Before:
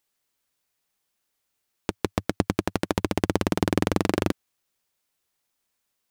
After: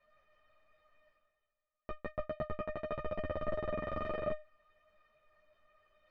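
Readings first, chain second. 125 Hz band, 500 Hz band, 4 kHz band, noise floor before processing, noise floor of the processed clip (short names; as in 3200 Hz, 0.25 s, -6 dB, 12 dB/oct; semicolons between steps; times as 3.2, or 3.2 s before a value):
-17.0 dB, -8.5 dB, -22.5 dB, -78 dBFS, under -85 dBFS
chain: cycle switcher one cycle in 2, inverted; in parallel at +2 dB: limiter -14.5 dBFS, peak gain reduction 10 dB; on the sum: Bessel low-pass 1500 Hz, order 4; resonator 610 Hz, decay 0.17 s, harmonics all, mix 100%; reverse; upward compressor, threshold -55 dBFS; reverse; ensemble effect; gain +7.5 dB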